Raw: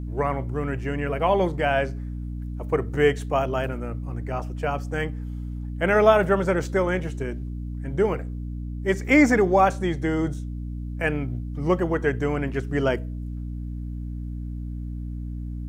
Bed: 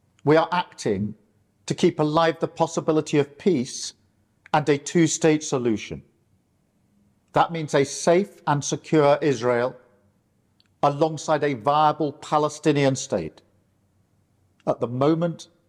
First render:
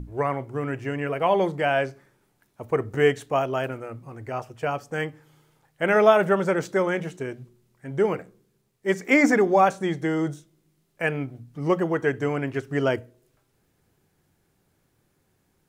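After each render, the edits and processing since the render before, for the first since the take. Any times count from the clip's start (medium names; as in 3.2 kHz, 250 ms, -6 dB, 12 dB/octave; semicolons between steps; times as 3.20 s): hum notches 60/120/180/240/300 Hz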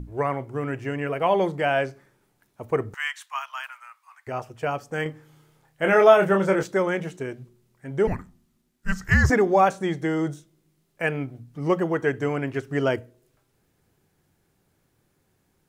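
2.94–4.27 s: elliptic high-pass 1 kHz, stop band 60 dB; 5.03–6.63 s: doubling 26 ms -5 dB; 8.07–9.30 s: frequency shift -370 Hz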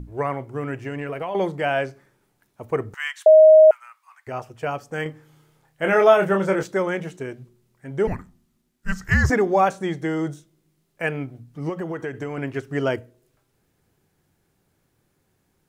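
0.74–1.35 s: compression 10:1, threshold -24 dBFS; 3.26–3.71 s: bleep 627 Hz -6.5 dBFS; 11.69–12.38 s: compression, threshold -25 dBFS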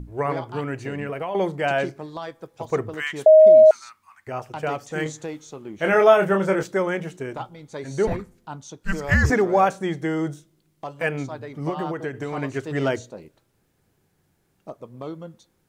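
add bed -14.5 dB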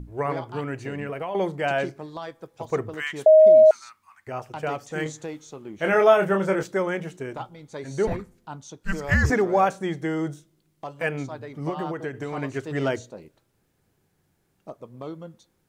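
trim -2 dB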